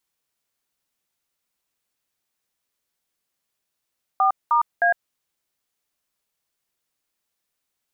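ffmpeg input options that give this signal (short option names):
-f lavfi -i "aevalsrc='0.133*clip(min(mod(t,0.309),0.107-mod(t,0.309))/0.002,0,1)*(eq(floor(t/0.309),0)*(sin(2*PI*770*mod(t,0.309))+sin(2*PI*1209*mod(t,0.309)))+eq(floor(t/0.309),1)*(sin(2*PI*941*mod(t,0.309))+sin(2*PI*1209*mod(t,0.309)))+eq(floor(t/0.309),2)*(sin(2*PI*697*mod(t,0.309))+sin(2*PI*1633*mod(t,0.309))))':d=0.927:s=44100"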